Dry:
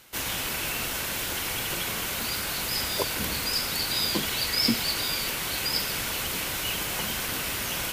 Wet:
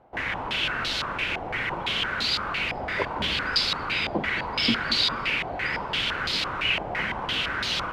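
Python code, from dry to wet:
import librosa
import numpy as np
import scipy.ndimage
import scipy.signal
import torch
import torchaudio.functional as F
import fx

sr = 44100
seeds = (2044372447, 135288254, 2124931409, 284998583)

y = fx.echo_split(x, sr, split_hz=790.0, low_ms=217, high_ms=595, feedback_pct=52, wet_db=-13)
y = fx.filter_held_lowpass(y, sr, hz=5.9, low_hz=740.0, high_hz=4100.0)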